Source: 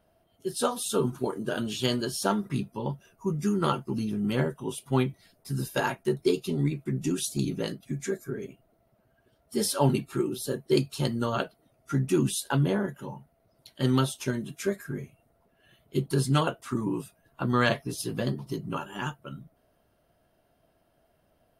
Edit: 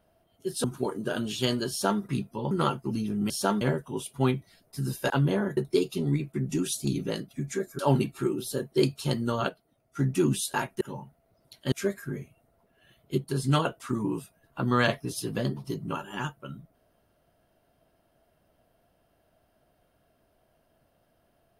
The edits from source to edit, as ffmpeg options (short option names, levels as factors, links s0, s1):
-filter_complex "[0:a]asplit=15[s0][s1][s2][s3][s4][s5][s6][s7][s8][s9][s10][s11][s12][s13][s14];[s0]atrim=end=0.642[s15];[s1]atrim=start=1.048:end=2.922[s16];[s2]atrim=start=3.538:end=4.332[s17];[s3]atrim=start=2.108:end=2.422[s18];[s4]atrim=start=4.328:end=5.822[s19];[s5]atrim=start=12.478:end=12.952[s20];[s6]atrim=start=6.088:end=8.312[s21];[s7]atrim=start=9.728:end=11.432[s22];[s8]atrim=start=11.428:end=11.932,asetpts=PTS-STARTPTS,volume=0.531[s23];[s9]atrim=start=11.928:end=12.482[s24];[s10]atrim=start=5.818:end=6.092[s25];[s11]atrim=start=12.948:end=13.862[s26];[s12]atrim=start=14.538:end=16.002[s27];[s13]atrim=start=15.998:end=16.262,asetpts=PTS-STARTPTS,volume=0.631[s28];[s14]atrim=start=16.258[s29];[s15][s16]acrossfade=d=0.004:c1=hsin:c2=hsin[s30];[s30][s17]acrossfade=d=0.004:c1=hsin:c2=hsin[s31];[s31][s18]acrossfade=d=0.004:c1=hsin:c2=hsin[s32];[s32][s19]acrossfade=d=0.004:c1=hsin:c2=hsin[s33];[s33][s20]acrossfade=d=0.004:c1=hsin:c2=hsin[s34];[s34][s21]acrossfade=d=0.004:c1=hsin:c2=hsin[s35];[s35][s22]acrossfade=d=0.004:c1=hsin:c2=hsin[s36];[s36][s23]acrossfade=d=0.004:c1=hsin:c2=hsin[s37];[s37][s24]acrossfade=d=0.004:c1=hsin:c2=hsin[s38];[s38][s25]acrossfade=d=0.004:c1=hsin:c2=hsin[s39];[s39][s26]acrossfade=d=0.004:c1=hsin:c2=hsin[s40];[s40][s27]acrossfade=d=0.004:c1=hsin:c2=hsin[s41];[s41][s28]acrossfade=d=0.004:c1=hsin:c2=hsin[s42];[s42][s29]acrossfade=d=0.004:c1=hsin:c2=hsin"